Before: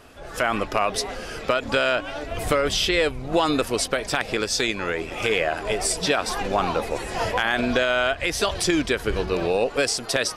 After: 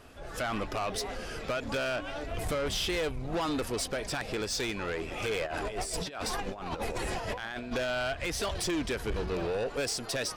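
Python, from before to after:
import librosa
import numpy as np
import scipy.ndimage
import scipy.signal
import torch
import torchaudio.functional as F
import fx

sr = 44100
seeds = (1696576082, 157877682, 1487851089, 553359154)

y = fx.low_shelf(x, sr, hz=200.0, db=4.0)
y = fx.over_compress(y, sr, threshold_db=-27.0, ratio=-0.5, at=(5.45, 7.71), fade=0.02)
y = 10.0 ** (-21.5 / 20.0) * np.tanh(y / 10.0 ** (-21.5 / 20.0))
y = y * 10.0 ** (-5.5 / 20.0)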